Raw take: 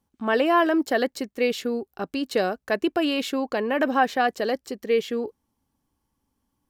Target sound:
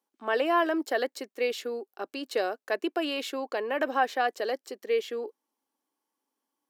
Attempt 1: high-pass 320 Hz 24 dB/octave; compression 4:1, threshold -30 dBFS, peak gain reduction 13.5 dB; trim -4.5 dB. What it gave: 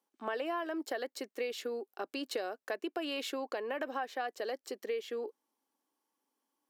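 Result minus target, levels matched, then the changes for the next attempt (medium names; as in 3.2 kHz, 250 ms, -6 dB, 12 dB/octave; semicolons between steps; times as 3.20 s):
compression: peak gain reduction +13.5 dB
remove: compression 4:1, threshold -30 dBFS, peak gain reduction 13.5 dB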